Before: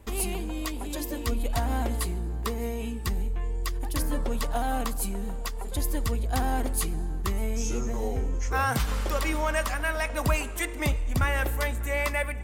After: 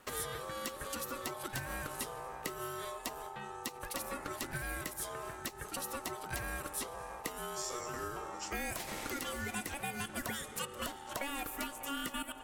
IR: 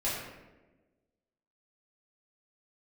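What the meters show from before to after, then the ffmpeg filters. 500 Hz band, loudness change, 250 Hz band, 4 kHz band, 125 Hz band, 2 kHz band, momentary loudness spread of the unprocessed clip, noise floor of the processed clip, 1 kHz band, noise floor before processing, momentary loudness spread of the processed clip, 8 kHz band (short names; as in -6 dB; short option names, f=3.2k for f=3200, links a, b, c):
-10.5 dB, -10.5 dB, -12.0 dB, -5.0 dB, -18.5 dB, -9.0 dB, 6 LU, -49 dBFS, -8.5 dB, -34 dBFS, 4 LU, -5.5 dB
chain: -filter_complex "[0:a]highpass=f=480:p=1,aeval=exprs='val(0)*sin(2*PI*840*n/s)':c=same,acrossover=split=870|6900[a][b][c];[a]acompressor=threshold=-44dB:ratio=4[d];[b]acompressor=threshold=-46dB:ratio=4[e];[c]acompressor=threshold=-45dB:ratio=4[f];[d][e][f]amix=inputs=3:normalize=0,volume=3dB"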